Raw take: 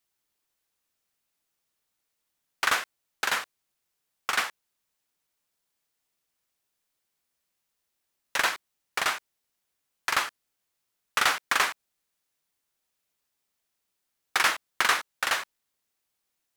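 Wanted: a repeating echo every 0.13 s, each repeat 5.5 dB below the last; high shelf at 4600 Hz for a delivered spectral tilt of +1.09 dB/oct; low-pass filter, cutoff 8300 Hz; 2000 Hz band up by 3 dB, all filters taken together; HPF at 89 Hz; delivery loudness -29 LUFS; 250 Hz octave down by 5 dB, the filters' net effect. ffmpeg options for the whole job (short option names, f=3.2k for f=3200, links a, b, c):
-af "highpass=89,lowpass=8.3k,equalizer=f=250:t=o:g=-7,equalizer=f=2k:t=o:g=5,highshelf=f=4.6k:g=-6.5,aecho=1:1:130|260|390|520|650|780|910:0.531|0.281|0.149|0.079|0.0419|0.0222|0.0118,volume=-3.5dB"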